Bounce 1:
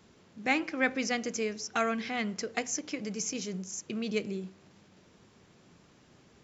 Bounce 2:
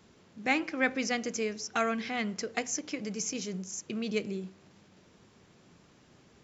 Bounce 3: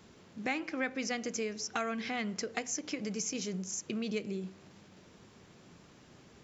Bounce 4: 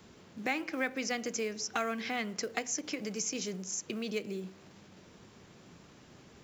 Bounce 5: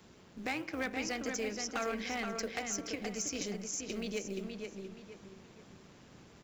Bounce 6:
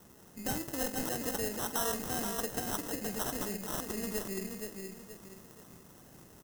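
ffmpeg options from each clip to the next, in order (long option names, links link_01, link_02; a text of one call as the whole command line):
ffmpeg -i in.wav -af anull out.wav
ffmpeg -i in.wav -af "acompressor=threshold=-37dB:ratio=2.5,volume=2.5dB" out.wav
ffmpeg -i in.wav -filter_complex "[0:a]acrossover=split=270|1800[link_01][link_02][link_03];[link_01]alimiter=level_in=17.5dB:limit=-24dB:level=0:latency=1:release=431,volume=-17.5dB[link_04];[link_02]acrusher=bits=6:mode=log:mix=0:aa=0.000001[link_05];[link_04][link_05][link_03]amix=inputs=3:normalize=0,volume=1.5dB" out.wav
ffmpeg -i in.wav -filter_complex "[0:a]tremolo=f=190:d=0.519,asoftclip=type=hard:threshold=-29dB,asplit=2[link_01][link_02];[link_02]adelay=474,lowpass=frequency=4800:poles=1,volume=-5dB,asplit=2[link_03][link_04];[link_04]adelay=474,lowpass=frequency=4800:poles=1,volume=0.34,asplit=2[link_05][link_06];[link_06]adelay=474,lowpass=frequency=4800:poles=1,volume=0.34,asplit=2[link_07][link_08];[link_08]adelay=474,lowpass=frequency=4800:poles=1,volume=0.34[link_09];[link_01][link_03][link_05][link_07][link_09]amix=inputs=5:normalize=0" out.wav
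ffmpeg -i in.wav -filter_complex "[0:a]acrusher=samples=19:mix=1:aa=0.000001,aexciter=amount=3.2:drive=6.1:freq=5400,asplit=2[link_01][link_02];[link_02]adelay=47,volume=-13dB[link_03];[link_01][link_03]amix=inputs=2:normalize=0" out.wav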